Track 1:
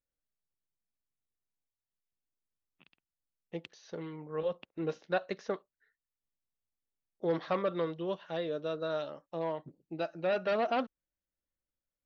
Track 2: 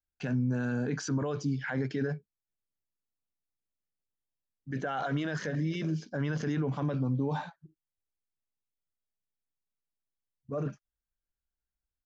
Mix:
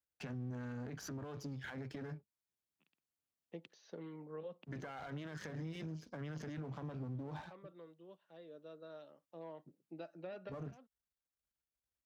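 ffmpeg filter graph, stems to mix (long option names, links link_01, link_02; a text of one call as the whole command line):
ffmpeg -i stem1.wav -i stem2.wav -filter_complex "[0:a]highpass=180,lowshelf=frequency=400:gain=7.5,volume=-1dB,afade=type=out:start_time=7.54:duration=0.68:silence=0.266073,afade=type=in:start_time=9.2:duration=0.53:silence=0.421697[link_01];[1:a]aeval=exprs='if(lt(val(0),0),0.251*val(0),val(0))':channel_layout=same,alimiter=level_in=4dB:limit=-24dB:level=0:latency=1:release=306,volume=-4dB,volume=-1dB,asplit=2[link_02][link_03];[link_03]apad=whole_len=531731[link_04];[link_01][link_04]sidechaincompress=threshold=-54dB:ratio=20:attack=8.7:release=892[link_05];[link_05][link_02]amix=inputs=2:normalize=0,highpass=66,acrossover=split=130[link_06][link_07];[link_07]acompressor=threshold=-44dB:ratio=6[link_08];[link_06][link_08]amix=inputs=2:normalize=0" out.wav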